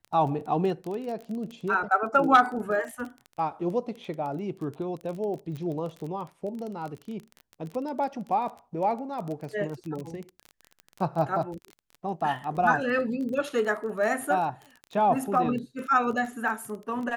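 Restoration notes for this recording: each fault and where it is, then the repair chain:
crackle 22 per s -33 dBFS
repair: de-click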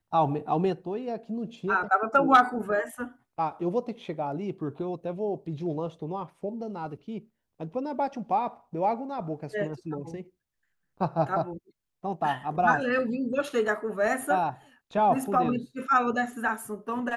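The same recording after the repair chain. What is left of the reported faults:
nothing left

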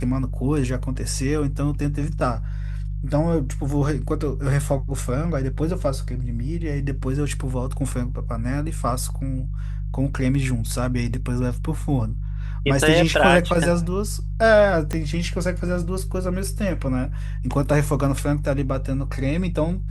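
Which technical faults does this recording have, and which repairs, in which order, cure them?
hum 50 Hz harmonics 3 -27 dBFS
10.14–10.15 s: dropout 6.2 ms
14.93 s: pop -13 dBFS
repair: de-click; de-hum 50 Hz, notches 3; interpolate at 10.14 s, 6.2 ms

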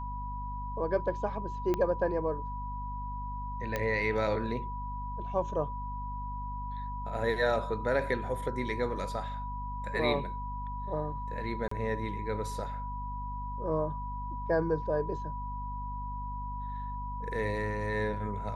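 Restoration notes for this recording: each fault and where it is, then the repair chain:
hum 50 Hz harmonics 5 -39 dBFS
whine 980 Hz -38 dBFS
1.74 s: pop -18 dBFS
3.76 s: pop -17 dBFS
11.68–11.71 s: dropout 34 ms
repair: de-click; de-hum 50 Hz, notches 5; band-stop 980 Hz, Q 30; interpolate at 11.68 s, 34 ms

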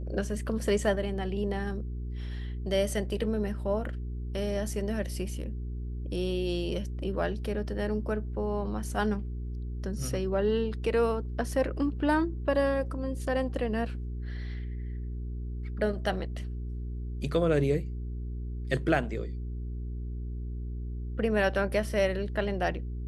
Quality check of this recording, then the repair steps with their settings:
hum 60 Hz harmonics 7 -35 dBFS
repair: de-hum 60 Hz, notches 7

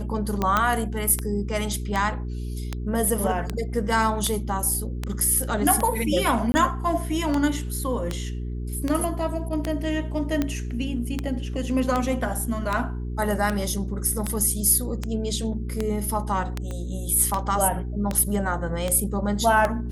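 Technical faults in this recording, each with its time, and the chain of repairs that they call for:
hum 60 Hz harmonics 7 -30 dBFS
tick 78 rpm -11 dBFS
0.57 s: pop -7 dBFS
6.52–6.54 s: dropout 20 ms
16.71 s: pop -21 dBFS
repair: de-click; de-hum 60 Hz, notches 7; interpolate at 6.52 s, 20 ms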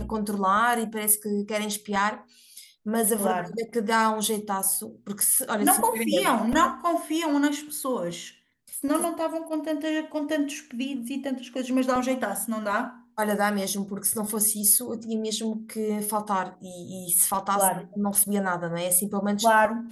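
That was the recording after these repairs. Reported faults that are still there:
16.71 s: pop

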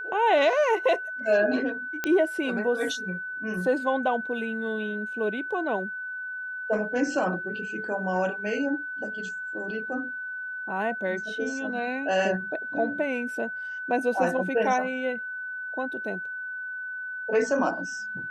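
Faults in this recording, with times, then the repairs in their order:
whine 1.5 kHz -32 dBFS
2.04 s: pop -12 dBFS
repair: de-click; band-stop 1.5 kHz, Q 30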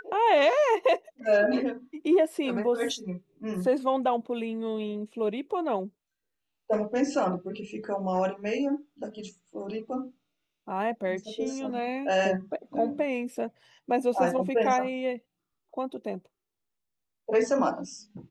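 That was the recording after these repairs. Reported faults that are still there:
nothing left

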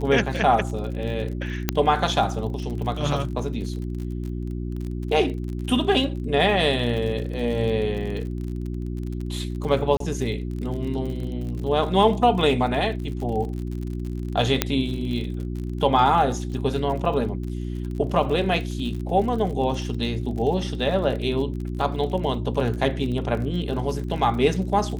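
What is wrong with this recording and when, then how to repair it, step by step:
crackle 40 per s -31 dBFS
hum 60 Hz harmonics 6 -29 dBFS
1.69 s: pop -4 dBFS
9.97–10.00 s: dropout 33 ms
14.62 s: pop -2 dBFS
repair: de-click; de-hum 60 Hz, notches 6; interpolate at 9.97 s, 33 ms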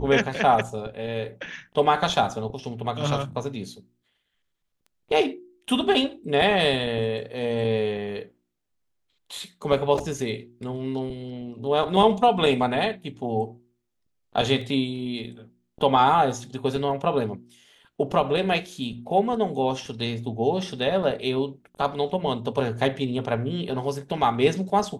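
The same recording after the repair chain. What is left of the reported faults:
14.62 s: pop

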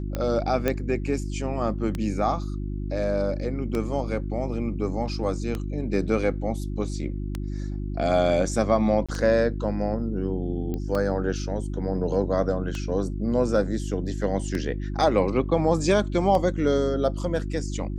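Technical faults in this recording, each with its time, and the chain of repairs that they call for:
hum 50 Hz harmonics 7 -30 dBFS
tick 33 1/3 rpm -15 dBFS
0.68 s: pop -10 dBFS
9.06–9.09 s: dropout 26 ms
10.74 s: pop -19 dBFS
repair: de-click; de-hum 50 Hz, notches 7; interpolate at 9.06 s, 26 ms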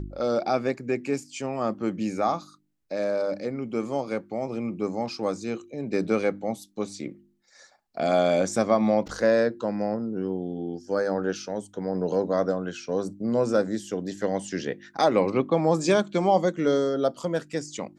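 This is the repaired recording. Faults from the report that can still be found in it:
nothing left

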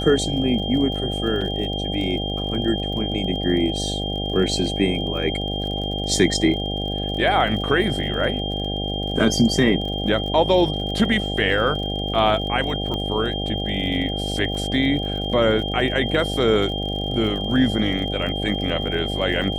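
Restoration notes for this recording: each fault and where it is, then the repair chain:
buzz 50 Hz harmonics 16 -27 dBFS
crackle 39 per s -31 dBFS
whine 3.2 kHz -28 dBFS
1.41 s: dropout 4.7 ms
12.94 s: pop -16 dBFS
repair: de-click; band-stop 3.2 kHz, Q 30; de-hum 50 Hz, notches 16; interpolate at 1.41 s, 4.7 ms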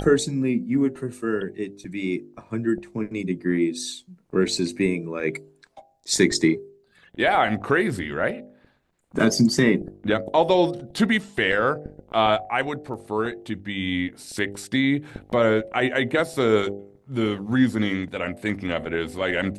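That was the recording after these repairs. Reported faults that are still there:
12.94 s: pop

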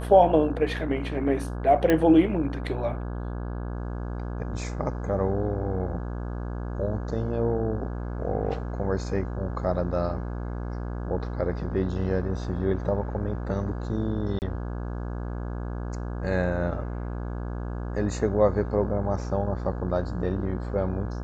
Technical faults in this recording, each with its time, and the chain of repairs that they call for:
buzz 60 Hz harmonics 28 -32 dBFS
1.90 s: pop -10 dBFS
14.39–14.42 s: dropout 29 ms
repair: de-click; de-hum 60 Hz, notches 28; interpolate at 14.39 s, 29 ms

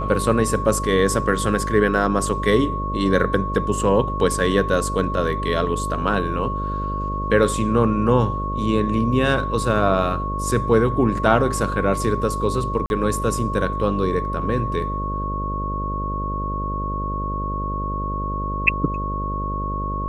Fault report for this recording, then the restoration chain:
buzz 50 Hz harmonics 12 -27 dBFS
whine 1.1 kHz -26 dBFS
12.86–12.90 s: dropout 41 ms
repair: de-hum 50 Hz, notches 12; band-stop 1.1 kHz, Q 30; interpolate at 12.86 s, 41 ms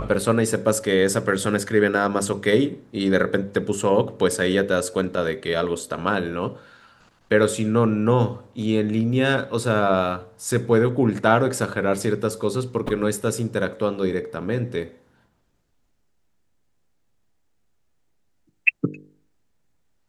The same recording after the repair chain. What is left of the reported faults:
nothing left

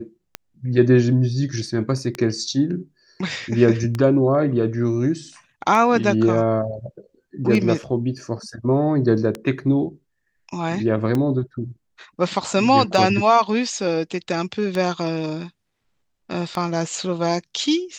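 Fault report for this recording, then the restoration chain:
tick 33 1/3 rpm -11 dBFS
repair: de-click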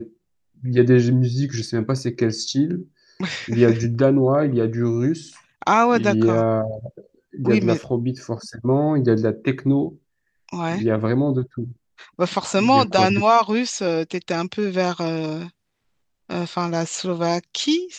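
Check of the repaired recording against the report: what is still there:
nothing left

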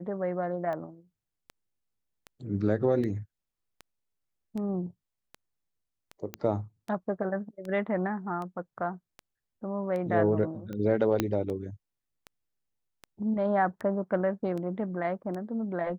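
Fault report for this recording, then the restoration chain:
tick 78 rpm -26 dBFS
6.34 s: pop -18 dBFS
11.20 s: pop -11 dBFS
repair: de-click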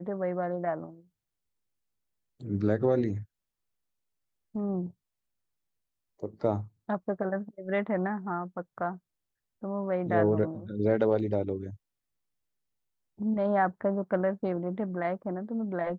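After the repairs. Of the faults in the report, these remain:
6.34 s: pop
11.20 s: pop

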